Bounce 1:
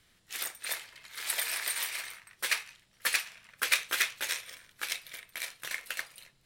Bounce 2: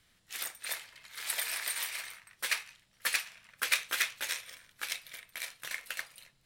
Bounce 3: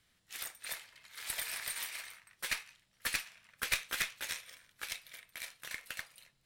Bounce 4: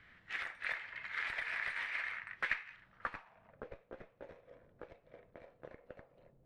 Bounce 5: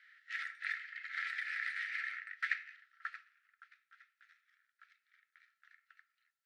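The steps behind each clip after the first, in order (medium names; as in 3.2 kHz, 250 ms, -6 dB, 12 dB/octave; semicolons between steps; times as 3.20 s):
peaking EQ 380 Hz -3.5 dB 0.52 oct; trim -2 dB
valve stage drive 15 dB, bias 0.75
compression 5:1, threshold -47 dBFS, peak gain reduction 18 dB; low-pass sweep 1.9 kHz -> 520 Hz, 2.70–3.67 s; trim +9.5 dB
rippled Chebyshev high-pass 1.3 kHz, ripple 6 dB; trim +2.5 dB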